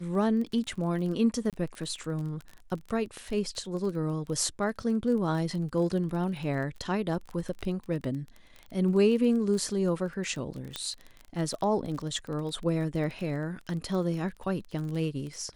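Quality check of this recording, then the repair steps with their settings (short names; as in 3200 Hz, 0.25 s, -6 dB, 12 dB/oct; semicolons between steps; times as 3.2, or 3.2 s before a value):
crackle 21/s -35 dBFS
1.5–1.53 gap 27 ms
10.76 pop -17 dBFS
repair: de-click; interpolate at 1.5, 27 ms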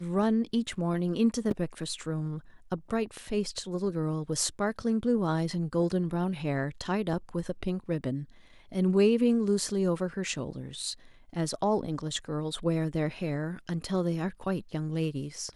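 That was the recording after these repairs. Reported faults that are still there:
none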